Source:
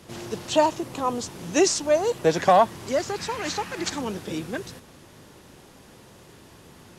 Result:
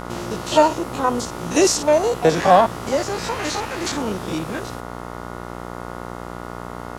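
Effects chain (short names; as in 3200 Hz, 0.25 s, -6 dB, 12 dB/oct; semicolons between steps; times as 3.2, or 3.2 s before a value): stepped spectrum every 50 ms; buzz 60 Hz, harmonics 24, -39 dBFS -1 dB/oct; harmoniser +7 st -13 dB; gain +6 dB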